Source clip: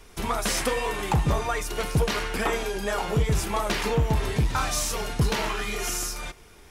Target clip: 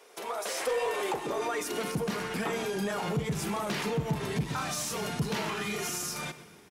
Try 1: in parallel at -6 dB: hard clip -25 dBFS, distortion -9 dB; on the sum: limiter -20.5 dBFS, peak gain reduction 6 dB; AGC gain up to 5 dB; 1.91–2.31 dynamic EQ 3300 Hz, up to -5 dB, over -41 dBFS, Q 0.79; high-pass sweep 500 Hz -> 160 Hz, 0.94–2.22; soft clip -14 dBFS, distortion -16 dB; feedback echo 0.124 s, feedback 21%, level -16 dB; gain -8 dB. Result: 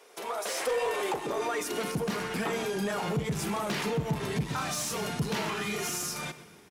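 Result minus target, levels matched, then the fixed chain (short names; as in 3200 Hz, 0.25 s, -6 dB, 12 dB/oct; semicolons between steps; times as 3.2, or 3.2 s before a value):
hard clip: distortion +37 dB
in parallel at -6 dB: hard clip -16.5 dBFS, distortion -46 dB; on the sum: limiter -20.5 dBFS, peak gain reduction 8 dB; AGC gain up to 5 dB; 1.91–2.31 dynamic EQ 3300 Hz, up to -5 dB, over -41 dBFS, Q 0.79; high-pass sweep 500 Hz -> 160 Hz, 0.94–2.22; soft clip -14 dBFS, distortion -16 dB; feedback echo 0.124 s, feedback 21%, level -16 dB; gain -8 dB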